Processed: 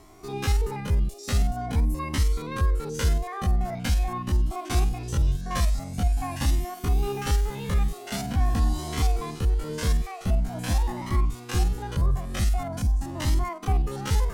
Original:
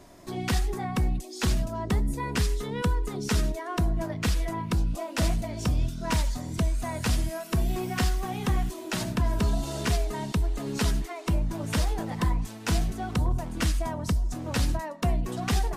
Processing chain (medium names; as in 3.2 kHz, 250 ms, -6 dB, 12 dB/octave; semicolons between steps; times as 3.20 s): spectrogram pixelated in time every 50 ms; tape speed +10%; Shepard-style flanger rising 0.45 Hz; trim +5.5 dB